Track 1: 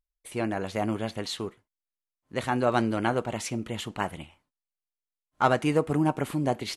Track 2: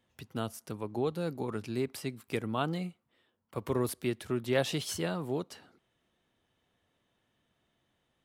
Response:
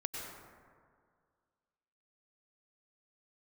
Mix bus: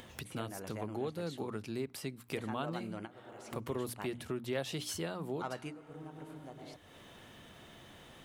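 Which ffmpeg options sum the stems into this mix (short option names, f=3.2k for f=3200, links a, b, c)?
-filter_complex "[0:a]volume=-11.5dB,asplit=2[a][b];[b]volume=-22dB[c];[1:a]volume=2dB,asplit=2[d][e];[e]apad=whole_len=298237[f];[a][f]sidechaingate=range=-33dB:threshold=-56dB:ratio=16:detection=peak[g];[2:a]atrim=start_sample=2205[h];[c][h]afir=irnorm=-1:irlink=0[i];[g][d][i]amix=inputs=3:normalize=0,acompressor=mode=upward:threshold=-37dB:ratio=2.5,bandreject=f=60:t=h:w=6,bandreject=f=120:t=h:w=6,bandreject=f=180:t=h:w=6,bandreject=f=240:t=h:w=6,bandreject=f=300:t=h:w=6,acompressor=threshold=-40dB:ratio=2"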